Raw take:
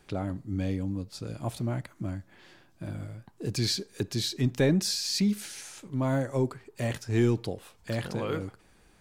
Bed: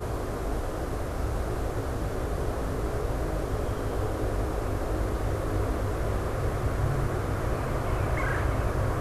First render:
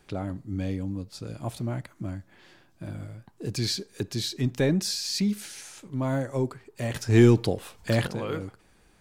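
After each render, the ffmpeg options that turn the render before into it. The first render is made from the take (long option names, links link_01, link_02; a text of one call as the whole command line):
ffmpeg -i in.wav -filter_complex "[0:a]asplit=3[link_01][link_02][link_03];[link_01]atrim=end=6.952[link_04];[link_02]atrim=start=6.948:end=8.072,asetpts=PTS-STARTPTS,volume=7.5dB[link_05];[link_03]atrim=start=8.068[link_06];[link_04][link_05]acrossfade=duration=0.004:curve1=hsin:curve2=hsin[link_07];[link_07][link_06]acrossfade=duration=0.004:curve1=hsin:curve2=hsin" out.wav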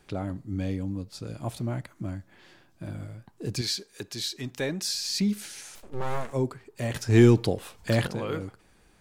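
ffmpeg -i in.wav -filter_complex "[0:a]asettb=1/sr,asplit=3[link_01][link_02][link_03];[link_01]atrim=end=3.614[link_04];[link_02]atrim=start=3.61:end=4.95,asetpts=PTS-STARTPTS,afade=type=in:duration=0.004:curve=qsin,afade=type=out:start_time=1.336:duration=0.004:curve=qsin,lowshelf=frequency=410:gain=-12[link_05];[link_03]atrim=start=4.946[link_06];[link_04][link_05]acrossfade=duration=0.004:curve1=hsin:curve2=qsin[link_07];[link_07][link_06]acrossfade=duration=0.004:curve1=qsin:curve2=hsin,asettb=1/sr,asplit=3[link_08][link_09][link_10];[link_08]atrim=end=5.754[link_11];[link_09]atrim=start=5.75:end=6.33,asetpts=PTS-STARTPTS,afade=type=in:duration=0.004:curve=qsin,afade=type=out:start_time=0.576:duration=0.004:curve=qsin,aeval=exprs='abs(val(0))':channel_layout=same[link_12];[link_10]atrim=start=6.326[link_13];[link_11][link_12]acrossfade=duration=0.004:curve1=hsin:curve2=qsin[link_14];[link_14][link_13]acrossfade=duration=0.004:curve1=qsin:curve2=hsin" out.wav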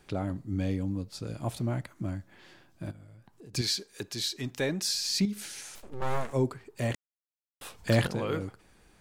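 ffmpeg -i in.wav -filter_complex "[0:a]asplit=3[link_01][link_02][link_03];[link_01]afade=type=out:start_time=2.9:duration=0.02[link_04];[link_02]acompressor=threshold=-52dB:ratio=3:attack=3.2:release=140:knee=1:detection=peak,afade=type=in:start_time=2.9:duration=0.02,afade=type=out:start_time=3.53:duration=0.02[link_05];[link_03]afade=type=in:start_time=3.53:duration=0.02[link_06];[link_04][link_05][link_06]amix=inputs=3:normalize=0,asettb=1/sr,asplit=3[link_07][link_08][link_09];[link_07]atrim=end=5.254[link_10];[link_08]atrim=start=5.25:end=6.02,asetpts=PTS-STARTPTS,afade=type=in:duration=0.004:curve=qsin,afade=type=out:start_time=0.766:duration=0.004:curve=qsin,acompressor=threshold=-36dB:ratio=2:attack=3.2:release=140:knee=1:detection=peak[link_11];[link_09]atrim=start=6.016[link_12];[link_10][link_11]acrossfade=duration=0.004:curve1=hsin:curve2=qsin[link_13];[link_13][link_12]acrossfade=duration=0.004:curve1=qsin:curve2=hsin,asplit=3[link_14][link_15][link_16];[link_14]atrim=end=6.95,asetpts=PTS-STARTPTS,afade=type=out:start_time=6.946:duration=0.004:curve=hsin[link_17];[link_15]atrim=start=6.95:end=7.61,asetpts=PTS-STARTPTS,volume=0[link_18];[link_16]atrim=start=7.61,asetpts=PTS-STARTPTS,afade=type=in:duration=0.004:curve=hsin[link_19];[link_17][link_18][link_19]concat=n=3:v=0:a=1" out.wav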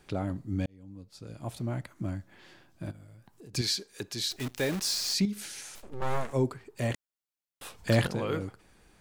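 ffmpeg -i in.wav -filter_complex "[0:a]asettb=1/sr,asplit=3[link_01][link_02][link_03];[link_01]atrim=end=2.944[link_04];[link_02]atrim=start=2.94:end=3.48,asetpts=PTS-STARTPTS,afade=type=in:duration=0.004:curve=qsin,afade=type=out:start_time=0.536:duration=0.004:curve=qsin,highshelf=frequency=5800:gain=6.5[link_05];[link_03]atrim=start=3.476[link_06];[link_04][link_05]acrossfade=duration=0.004:curve1=hsin:curve2=qsin[link_07];[link_07][link_06]acrossfade=duration=0.004:curve1=qsin:curve2=hsin,asplit=3[link_08][link_09][link_10];[link_08]afade=type=out:start_time=4.3:duration=0.02[link_11];[link_09]acrusher=bits=7:dc=4:mix=0:aa=0.000001,afade=type=in:start_time=4.3:duration=0.02,afade=type=out:start_time=5.13:duration=0.02[link_12];[link_10]afade=type=in:start_time=5.13:duration=0.02[link_13];[link_11][link_12][link_13]amix=inputs=3:normalize=0,asplit=2[link_14][link_15];[link_14]atrim=end=0.66,asetpts=PTS-STARTPTS,afade=type=out:start_time=0.656:duration=0.004:curve=hsin[link_16];[link_15]atrim=start=0.66,asetpts=PTS-STARTPTS,afade=type=in:duration=1.36[link_17];[link_16][link_17]concat=n=2:v=0:a=1" out.wav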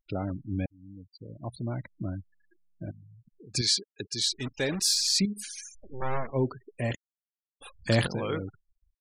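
ffmpeg -i in.wav -af "afftfilt=real='re*gte(hypot(re,im),0.0112)':imag='im*gte(hypot(re,im),0.0112)':win_size=1024:overlap=0.75,highshelf=frequency=3800:gain=8" out.wav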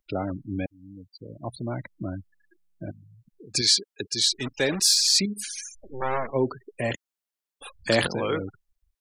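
ffmpeg -i in.wav -filter_complex "[0:a]acrossover=split=250[link_01][link_02];[link_01]alimiter=level_in=5.5dB:limit=-24dB:level=0:latency=1:release=11,volume=-5.5dB[link_03];[link_02]acontrast=38[link_04];[link_03][link_04]amix=inputs=2:normalize=0" out.wav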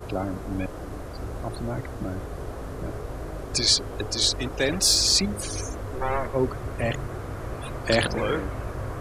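ffmpeg -i in.wav -i bed.wav -filter_complex "[1:a]volume=-5dB[link_01];[0:a][link_01]amix=inputs=2:normalize=0" out.wav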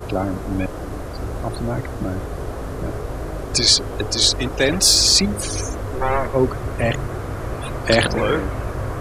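ffmpeg -i in.wav -af "volume=6.5dB,alimiter=limit=-3dB:level=0:latency=1" out.wav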